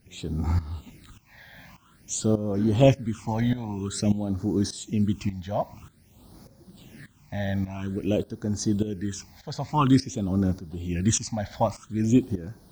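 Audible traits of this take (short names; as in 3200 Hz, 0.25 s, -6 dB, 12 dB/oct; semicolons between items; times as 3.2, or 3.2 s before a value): a quantiser's noise floor 10-bit, dither triangular; tremolo saw up 1.7 Hz, depth 80%; phasing stages 8, 0.5 Hz, lowest notch 350–2800 Hz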